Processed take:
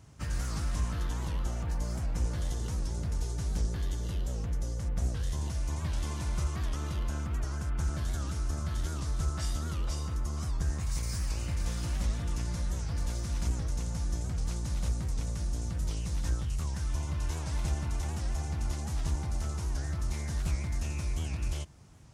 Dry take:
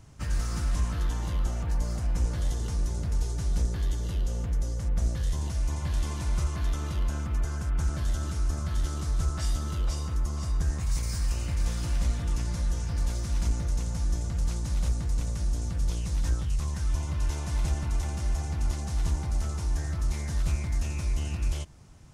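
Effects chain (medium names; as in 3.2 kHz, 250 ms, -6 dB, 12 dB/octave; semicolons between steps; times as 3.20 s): high-pass 48 Hz; warped record 78 rpm, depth 160 cents; trim -2 dB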